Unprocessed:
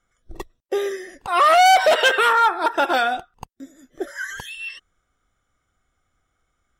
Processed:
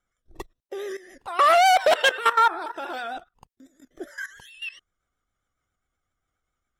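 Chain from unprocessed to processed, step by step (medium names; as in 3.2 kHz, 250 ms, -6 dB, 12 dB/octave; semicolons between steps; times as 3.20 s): level held to a coarse grid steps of 16 dB; vibrato 7.4 Hz 60 cents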